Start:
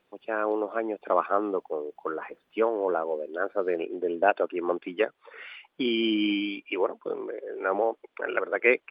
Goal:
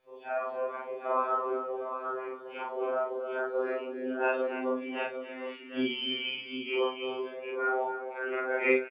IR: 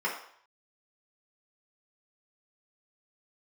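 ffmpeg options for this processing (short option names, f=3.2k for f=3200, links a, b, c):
-af "afftfilt=real='re':imag='-im':win_size=4096:overlap=0.75,aecho=1:1:59|282|755:0.188|0.299|0.376,afftfilt=real='re*2.45*eq(mod(b,6),0)':imag='im*2.45*eq(mod(b,6),0)':win_size=2048:overlap=0.75,volume=3dB"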